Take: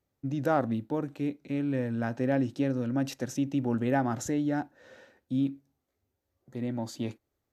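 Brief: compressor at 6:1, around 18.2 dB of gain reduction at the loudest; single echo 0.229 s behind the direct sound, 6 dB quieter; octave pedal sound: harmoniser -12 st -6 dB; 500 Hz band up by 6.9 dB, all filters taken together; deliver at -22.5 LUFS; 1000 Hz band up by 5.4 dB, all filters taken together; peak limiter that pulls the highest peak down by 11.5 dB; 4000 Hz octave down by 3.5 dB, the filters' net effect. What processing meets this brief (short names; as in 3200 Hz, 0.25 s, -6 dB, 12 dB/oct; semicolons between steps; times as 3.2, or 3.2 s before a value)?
bell 500 Hz +7 dB; bell 1000 Hz +4.5 dB; bell 4000 Hz -5 dB; compressor 6:1, threshold -36 dBFS; limiter -35.5 dBFS; echo 0.229 s -6 dB; harmoniser -12 st -6 dB; gain +21 dB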